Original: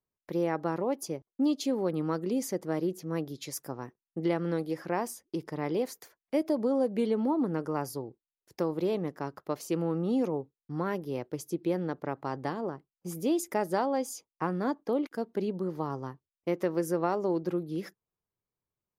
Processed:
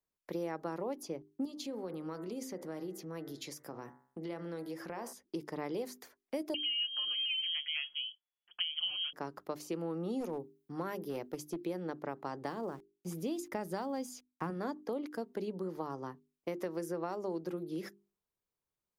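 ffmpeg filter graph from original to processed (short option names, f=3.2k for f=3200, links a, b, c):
-filter_complex "[0:a]asettb=1/sr,asplit=3[a][b][c];[a]atrim=end=1.454[d];[b]atrim=start=1.45:end=5.13,asetpts=PTS-STARTPTS,afade=t=in:d=0.004:c=qsin,afade=t=out:st=3.676:d=0.004:c=qsin,highshelf=f=4.8k:g=4,bandreject=f=65.52:t=h:w=4,bandreject=f=131.04:t=h:w=4,bandreject=f=196.56:t=h:w=4,bandreject=f=262.08:t=h:w=4,bandreject=f=327.6:t=h:w=4,bandreject=f=393.12:t=h:w=4,bandreject=f=458.64:t=h:w=4,bandreject=f=524.16:t=h:w=4,bandreject=f=589.68:t=h:w=4,bandreject=f=655.2:t=h:w=4,bandreject=f=720.72:t=h:w=4,bandreject=f=786.24:t=h:w=4,bandreject=f=851.76:t=h:w=4,bandreject=f=917.28:t=h:w=4,bandreject=f=982.8:t=h:w=4,bandreject=f=1.04832k:t=h:w=4,bandreject=f=1.11384k:t=h:w=4,bandreject=f=1.17936k:t=h:w=4,bandreject=f=1.24488k:t=h:w=4,bandreject=f=1.3104k:t=h:w=4,bandreject=f=1.37592k:t=h:w=4,bandreject=f=1.44144k:t=h:w=4,bandreject=f=1.50696k:t=h:w=4,bandreject=f=1.57248k:t=h:w=4,bandreject=f=1.638k:t=h:w=4,bandreject=f=1.70352k:t=h:w=4,bandreject=f=1.76904k:t=h:w=4,bandreject=f=1.83456k:t=h:w=4,bandreject=f=1.90008k:t=h:w=4,bandreject=f=1.9656k:t=h:w=4,bandreject=f=2.03112k:t=h:w=4,bandreject=f=2.09664k:t=h:w=4,bandreject=f=2.16216k:t=h:w=4,acompressor=threshold=-37dB:ratio=3:attack=3.2:release=140:knee=1:detection=peak[e];[c]atrim=start=5.126[f];[d][e]acrossfade=d=0.004:c1=hsin:c2=qsin[g];[g][f]acrossfade=d=0.004:c1=qsin:c2=hsin,asettb=1/sr,asplit=3[h][i][j];[h]atrim=end=6.544[k];[i]atrim=start=6.54:end=9.13,asetpts=PTS-STARTPTS,afade=t=in:d=0.004:c=qsin,afade=t=out:st=2.586:d=0.004:c=qsin,aecho=1:1:5.6:0.61,atrim=end_sample=114219,lowpass=f=2.9k:t=q:w=0.5098,lowpass=f=2.9k:t=q:w=0.6013,lowpass=f=2.9k:t=q:w=0.9,lowpass=f=2.9k:t=q:w=2.563,afreqshift=-3400[l];[j]atrim=start=9.126[m];[k][l]acrossfade=d=0.004:c1=hsin:c2=qsin[n];[n][m]acrossfade=d=0.004:c1=qsin:c2=hsin,asettb=1/sr,asplit=3[o][p][q];[o]atrim=end=10.204[r];[p]atrim=start=10.2:end=11.66,asetpts=PTS-STARTPTS,afade=t=in:d=0.004:c=qsin,afade=t=out:st=1.456:d=0.004:c=qsin,highshelf=f=11k:g=10,aeval=exprs='clip(val(0),-1,0.0376)':c=same[s];[q]atrim=start=11.656[t];[r][s]acrossfade=d=0.004:c1=hsin:c2=qsin[u];[u][t]acrossfade=d=0.004:c1=qsin:c2=hsin,asettb=1/sr,asplit=3[v][w][x];[v]atrim=end=12.454[y];[w]atrim=start=12.45:end=14.5,asetpts=PTS-STARTPTS,afade=t=in:d=0.004:c=qsin,afade=t=out:st=2.046:d=0.004:c=qsin,asubboost=boost=6:cutoff=230,aeval=exprs='val(0)*gte(abs(val(0)),0.00188)':c=same[z];[x]atrim=start=14.496[aa];[y][z]acrossfade=d=0.004:c1=hsin:c2=qsin[ab];[ab][aa]acrossfade=d=0.004:c1=qsin:c2=hsin,equalizer=f=110:w=1.5:g=-6.5,bandreject=f=50:t=h:w=6,bandreject=f=100:t=h:w=6,bandreject=f=150:t=h:w=6,bandreject=f=200:t=h:w=6,bandreject=f=250:t=h:w=6,bandreject=f=300:t=h:w=6,bandreject=f=350:t=h:w=6,bandreject=f=400:t=h:w=6,acrossover=split=150|5000[ac][ad][ae];[ac]acompressor=threshold=-55dB:ratio=4[af];[ad]acompressor=threshold=-34dB:ratio=4[ag];[ae]acompressor=threshold=-51dB:ratio=4[ah];[af][ag][ah]amix=inputs=3:normalize=0,volume=-1dB"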